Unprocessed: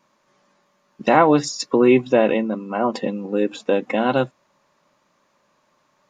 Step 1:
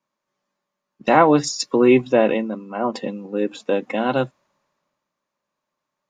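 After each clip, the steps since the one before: three bands expanded up and down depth 40%; trim -1 dB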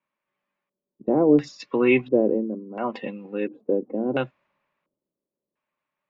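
LFO low-pass square 0.72 Hz 400–2500 Hz; trim -5.5 dB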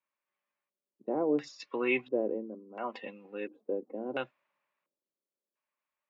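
high-pass 610 Hz 6 dB/octave; trim -6 dB

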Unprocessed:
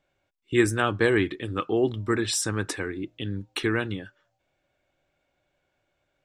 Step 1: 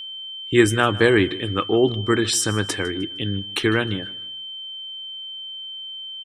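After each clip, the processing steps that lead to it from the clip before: feedback delay 154 ms, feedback 33%, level -20.5 dB; whistle 3.1 kHz -37 dBFS; trim +5.5 dB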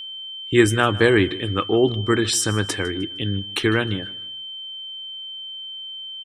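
peaking EQ 77 Hz +3.5 dB 0.86 oct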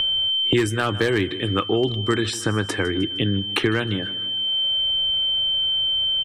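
overload inside the chain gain 8 dB; three bands compressed up and down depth 100%; trim -1.5 dB

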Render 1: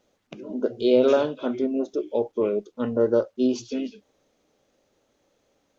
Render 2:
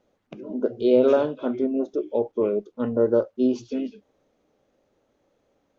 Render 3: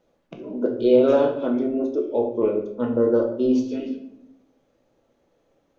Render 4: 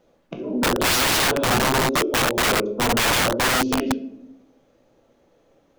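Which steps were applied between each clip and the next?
treble shelf 2.7 kHz -11.5 dB; trim +1 dB
simulated room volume 180 m³, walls mixed, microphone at 0.71 m
integer overflow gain 20.5 dB; trim +6 dB

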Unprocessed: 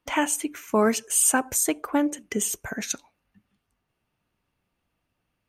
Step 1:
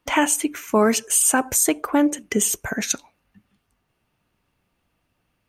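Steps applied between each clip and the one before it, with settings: peak limiter -14 dBFS, peak gain reduction 5.5 dB; trim +6 dB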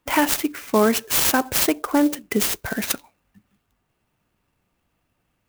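sampling jitter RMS 0.041 ms

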